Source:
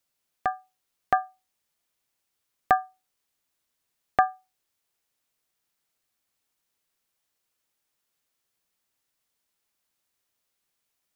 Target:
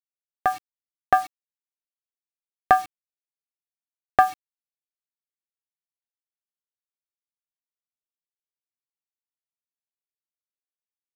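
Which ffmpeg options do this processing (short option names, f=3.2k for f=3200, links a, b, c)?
-filter_complex "[0:a]asplit=2[a][b];[b]asoftclip=type=tanh:threshold=-21.5dB,volume=-9dB[c];[a][c]amix=inputs=2:normalize=0,acrusher=bits=6:mix=0:aa=0.000001,volume=3dB"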